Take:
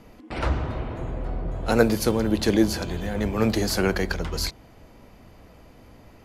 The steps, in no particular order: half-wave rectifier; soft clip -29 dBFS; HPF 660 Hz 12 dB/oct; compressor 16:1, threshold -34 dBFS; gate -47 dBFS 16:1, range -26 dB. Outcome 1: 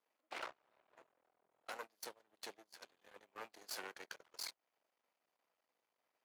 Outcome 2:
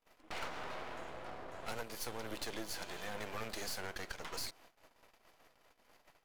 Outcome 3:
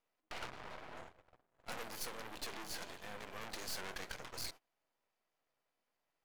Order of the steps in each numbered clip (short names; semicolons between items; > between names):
compressor > half-wave rectifier > HPF > soft clip > gate; gate > HPF > half-wave rectifier > compressor > soft clip; soft clip > compressor > HPF > gate > half-wave rectifier